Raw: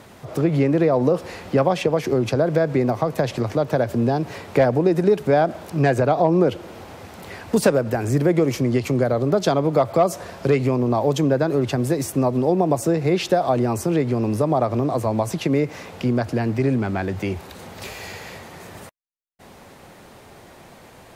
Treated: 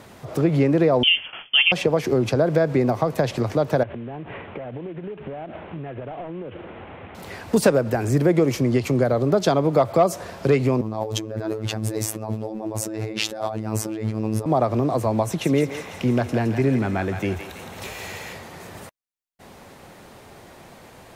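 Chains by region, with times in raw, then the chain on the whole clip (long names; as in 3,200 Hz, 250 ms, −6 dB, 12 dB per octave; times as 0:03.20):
0:01.03–0:01.72: noise gate with hold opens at −24 dBFS, closes at −27 dBFS + voice inversion scrambler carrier 3,300 Hz
0:03.83–0:07.15: variable-slope delta modulation 16 kbit/s + downward compressor 16 to 1, threshold −29 dBFS
0:10.81–0:14.46: compressor whose output falls as the input rises −25 dBFS + phases set to zero 109 Hz
0:15.24–0:18.33: notch filter 4,700 Hz, Q 8.3 + feedback echo with a high-pass in the loop 166 ms, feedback 62%, high-pass 1,000 Hz, level −5.5 dB
whole clip: no processing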